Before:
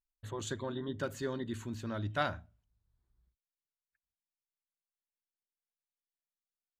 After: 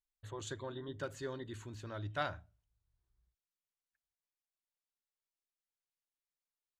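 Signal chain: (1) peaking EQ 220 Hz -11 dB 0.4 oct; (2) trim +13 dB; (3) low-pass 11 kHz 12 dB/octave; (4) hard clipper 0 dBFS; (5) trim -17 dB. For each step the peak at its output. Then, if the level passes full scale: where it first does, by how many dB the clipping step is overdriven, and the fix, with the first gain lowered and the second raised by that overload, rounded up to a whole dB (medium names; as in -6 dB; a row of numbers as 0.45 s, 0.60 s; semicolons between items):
-17.5 dBFS, -4.5 dBFS, -4.5 dBFS, -4.5 dBFS, -21.5 dBFS; nothing clips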